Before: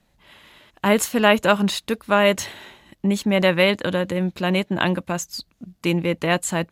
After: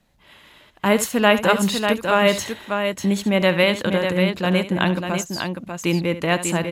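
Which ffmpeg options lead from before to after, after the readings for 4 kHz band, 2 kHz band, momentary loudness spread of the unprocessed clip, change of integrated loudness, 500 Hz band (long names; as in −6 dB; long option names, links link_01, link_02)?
+1.0 dB, +1.0 dB, 10 LU, +0.5 dB, +1.0 dB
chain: -af "aecho=1:1:71|595:0.211|0.501"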